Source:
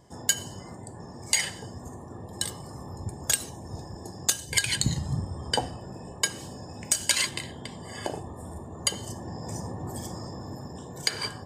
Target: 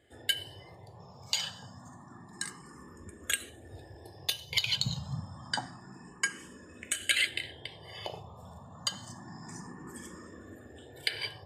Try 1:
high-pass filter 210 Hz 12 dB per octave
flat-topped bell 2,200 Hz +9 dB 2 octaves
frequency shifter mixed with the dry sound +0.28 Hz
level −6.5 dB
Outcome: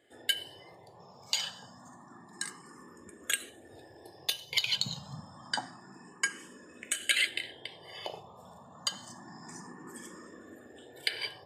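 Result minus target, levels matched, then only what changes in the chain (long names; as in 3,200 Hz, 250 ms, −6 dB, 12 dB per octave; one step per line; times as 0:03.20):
125 Hz band −9.0 dB
change: high-pass filter 61 Hz 12 dB per octave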